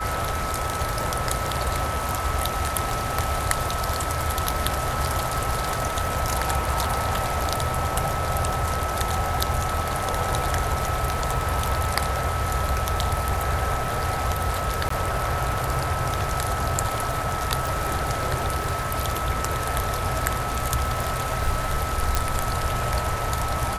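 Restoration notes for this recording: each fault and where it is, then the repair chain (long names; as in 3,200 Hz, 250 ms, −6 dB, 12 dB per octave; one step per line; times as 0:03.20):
surface crackle 30 per second −29 dBFS
whistle 1,300 Hz −30 dBFS
0:14.89–0:14.90: drop-out 14 ms
0:17.67: click
0:22.15: click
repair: click removal
notch filter 1,300 Hz, Q 30
repair the gap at 0:14.89, 14 ms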